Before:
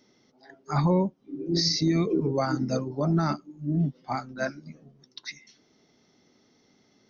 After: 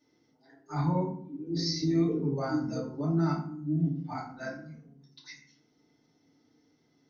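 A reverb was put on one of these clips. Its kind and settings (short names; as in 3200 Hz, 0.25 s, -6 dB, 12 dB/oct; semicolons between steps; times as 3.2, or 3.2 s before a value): FDN reverb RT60 0.55 s, low-frequency decay 1.6×, high-frequency decay 0.6×, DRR -7.5 dB; gain -15.5 dB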